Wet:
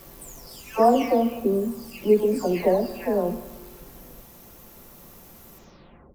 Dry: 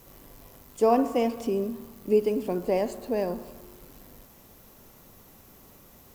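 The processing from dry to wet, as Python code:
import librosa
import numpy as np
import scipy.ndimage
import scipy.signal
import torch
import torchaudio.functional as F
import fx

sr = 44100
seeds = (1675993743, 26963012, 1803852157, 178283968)

y = fx.spec_delay(x, sr, highs='early', ms=563)
y = fx.room_flutter(y, sr, wall_m=9.9, rt60_s=0.24)
y = F.gain(torch.from_numpy(y), 6.0).numpy()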